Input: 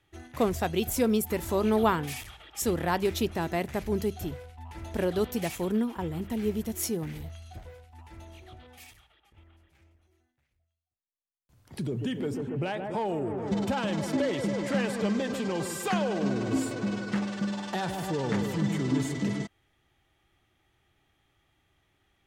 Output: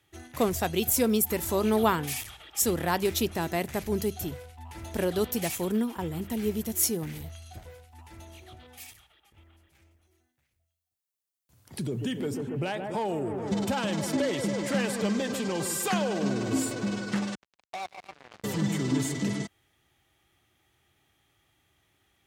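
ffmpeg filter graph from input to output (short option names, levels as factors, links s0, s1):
-filter_complex "[0:a]asettb=1/sr,asplit=3[s0][s1][s2];[s0]atrim=end=17.354[s3];[s1]atrim=start=17.35:end=18.44,asetpts=PTS-STARTPTS,afade=t=in:d=0.004:c=qsin,afade=t=out:st=1.086:d=0.004:c=qsin,asplit=3[s4][s5][s6];[s4]bandpass=f=730:t=q:w=8,volume=1[s7];[s5]bandpass=f=1090:t=q:w=8,volume=0.501[s8];[s6]bandpass=f=2440:t=q:w=8,volume=0.355[s9];[s7][s8][s9]amix=inputs=3:normalize=0,acrusher=bits=5:mix=0:aa=0.5[s10];[s2]atrim=start=18.436[s11];[s3][s10]acrossfade=d=0.004:c1=hsin:c2=qsin[s12];[s12][s11]acrossfade=d=0.004:c1=qsin:c2=hsin,highpass=56,highshelf=f=5100:g=9.5"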